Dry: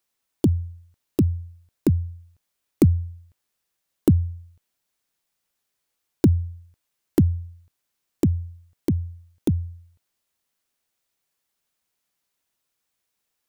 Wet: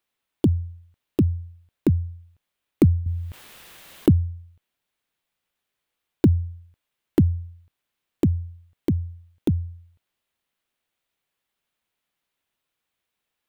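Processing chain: resonant high shelf 4.2 kHz -6 dB, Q 1.5; 3.06–4.12 s: level flattener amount 50%

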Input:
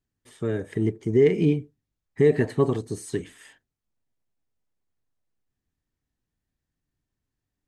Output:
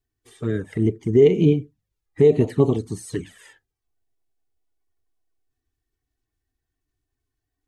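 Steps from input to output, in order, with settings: coarse spectral quantiser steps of 15 dB; touch-sensitive flanger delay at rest 2.7 ms, full sweep at -19 dBFS; trim +5 dB

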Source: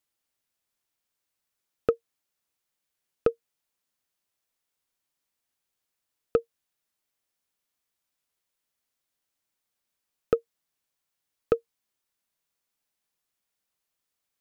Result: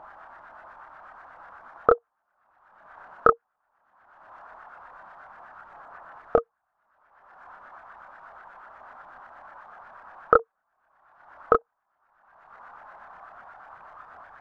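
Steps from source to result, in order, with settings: LFO low-pass saw up 8.2 Hz 760–1800 Hz; upward compressor, threshold -34 dBFS; chorus voices 6, 1.4 Hz, delay 28 ms, depth 3 ms; high-order bell 1 kHz +13.5 dB; trim +3 dB

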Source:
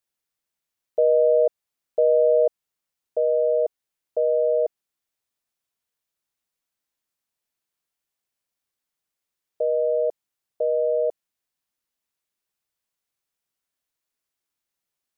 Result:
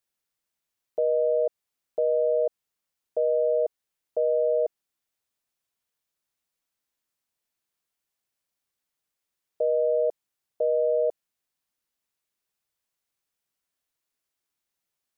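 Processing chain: peak limiter -17 dBFS, peak gain reduction 6 dB

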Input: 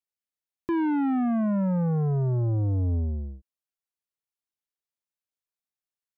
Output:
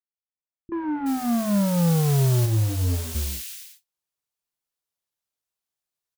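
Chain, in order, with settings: fade-in on the opening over 1.71 s; vibrato 1.7 Hz 7.5 cents; modulation noise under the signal 14 dB; three bands offset in time lows, mids, highs 30/370 ms, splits 250/2000 Hz; 2.45–3.14 s: detune thickener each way 34 cents -> 24 cents; trim +5.5 dB

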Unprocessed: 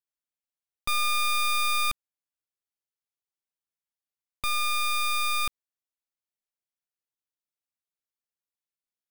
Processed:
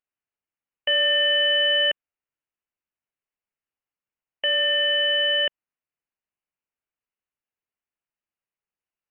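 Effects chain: frequency inversion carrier 3 kHz; trim +4 dB

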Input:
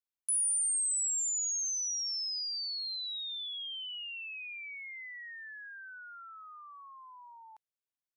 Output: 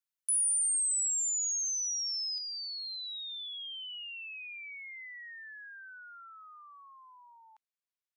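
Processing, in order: high-pass 1.1 kHz; treble shelf 7 kHz +2 dB, from 2.38 s -9 dB

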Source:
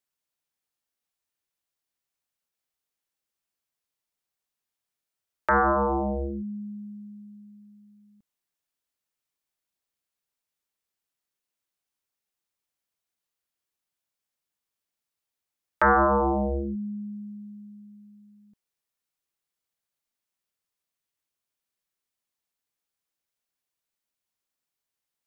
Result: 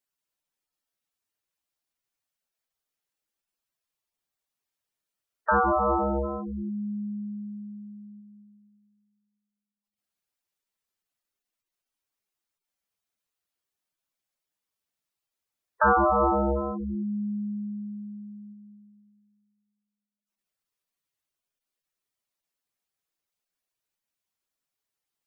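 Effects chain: algorithmic reverb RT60 2.1 s, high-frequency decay 0.7×, pre-delay 105 ms, DRR 6 dB; spectral gate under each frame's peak -10 dB strong

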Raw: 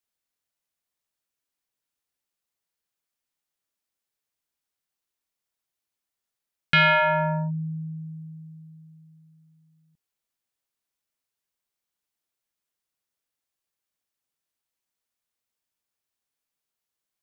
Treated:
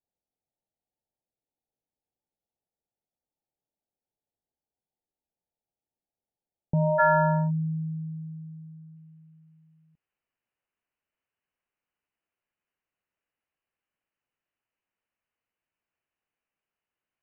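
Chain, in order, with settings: Chebyshev low-pass 890 Hz, order 8, from 6.98 s 1.7 kHz, from 8.95 s 3 kHz; trim +2.5 dB

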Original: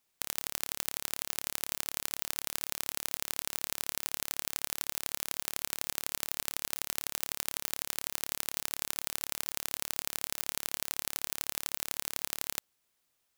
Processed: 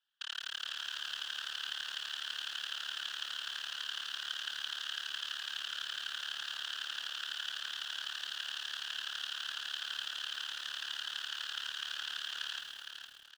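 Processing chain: treble shelf 2.3 kHz +7 dB; waveshaping leveller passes 2; two resonant band-passes 2.2 kHz, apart 0.98 oct; whisper effect; distance through air 120 m; on a send: feedback delay 461 ms, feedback 36%, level -7 dB; on the sum: bit-crushed delay 108 ms, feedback 55%, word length 10-bit, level -8 dB; trim +7 dB

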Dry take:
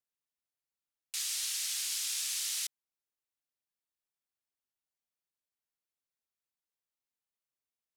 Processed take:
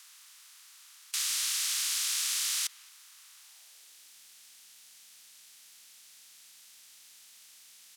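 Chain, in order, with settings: spectral levelling over time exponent 0.4; high-pass sweep 1.1 kHz -> 180 Hz, 3.38–4.19 s; speakerphone echo 220 ms, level -21 dB

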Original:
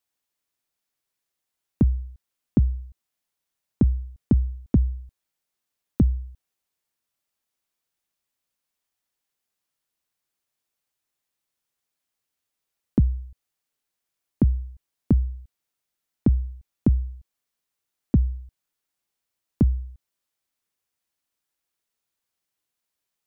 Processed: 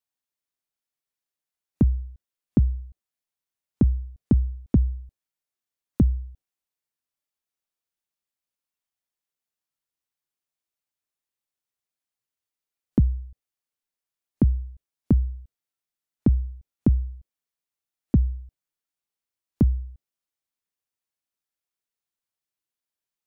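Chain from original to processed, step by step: spectral noise reduction 8 dB

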